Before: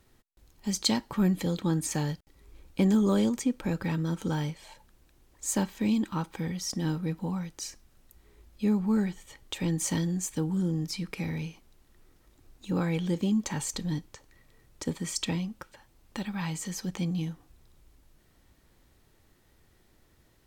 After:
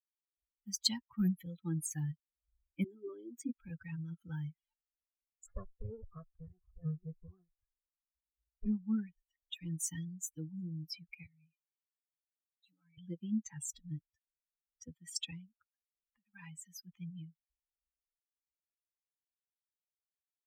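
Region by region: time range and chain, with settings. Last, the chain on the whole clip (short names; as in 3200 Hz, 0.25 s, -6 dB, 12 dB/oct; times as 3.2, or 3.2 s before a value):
2.84–3.49 compressor 8:1, threshold -28 dBFS + resonant high-pass 330 Hz, resonance Q 4
5.46–8.66 minimum comb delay 1.7 ms + LPF 1200 Hz
11.26–12.98 HPF 130 Hz 24 dB/oct + comb 7 ms, depth 82% + compressor 10:1, threshold -36 dBFS
15.53–16.34 high shelf 2700 Hz -7.5 dB + compressor 3:1, threshold -40 dBFS
whole clip: per-bin expansion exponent 3; passive tone stack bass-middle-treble 6-0-2; gain +14 dB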